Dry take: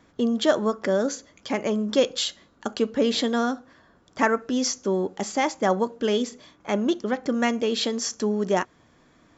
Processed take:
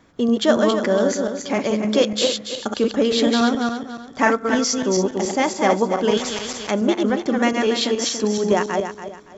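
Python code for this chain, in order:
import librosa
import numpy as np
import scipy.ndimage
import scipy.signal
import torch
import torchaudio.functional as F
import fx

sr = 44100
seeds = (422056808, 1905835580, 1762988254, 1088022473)

y = fx.reverse_delay_fb(x, sr, ms=142, feedback_pct=53, wet_db=-3)
y = fx.spectral_comp(y, sr, ratio=2.0, at=(6.17, 6.71))
y = y * 10.0 ** (3.0 / 20.0)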